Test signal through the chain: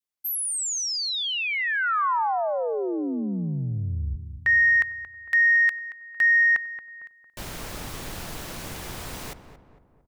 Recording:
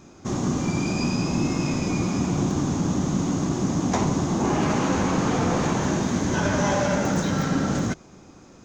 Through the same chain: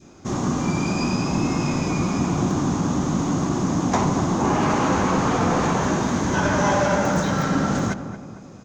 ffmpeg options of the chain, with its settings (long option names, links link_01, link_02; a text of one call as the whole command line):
ffmpeg -i in.wav -filter_complex "[0:a]adynamicequalizer=threshold=0.0126:dfrequency=1100:dqfactor=1:tfrequency=1100:tqfactor=1:attack=5:release=100:ratio=0.375:range=2.5:mode=boostabove:tftype=bell,acontrast=34,asplit=2[link_01][link_02];[link_02]adelay=227,lowpass=frequency=1400:poles=1,volume=-10dB,asplit=2[link_03][link_04];[link_04]adelay=227,lowpass=frequency=1400:poles=1,volume=0.51,asplit=2[link_05][link_06];[link_06]adelay=227,lowpass=frequency=1400:poles=1,volume=0.51,asplit=2[link_07][link_08];[link_08]adelay=227,lowpass=frequency=1400:poles=1,volume=0.51,asplit=2[link_09][link_10];[link_10]adelay=227,lowpass=frequency=1400:poles=1,volume=0.51,asplit=2[link_11][link_12];[link_12]adelay=227,lowpass=frequency=1400:poles=1,volume=0.51[link_13];[link_03][link_05][link_07][link_09][link_11][link_13]amix=inputs=6:normalize=0[link_14];[link_01][link_14]amix=inputs=2:normalize=0,volume=-4.5dB" out.wav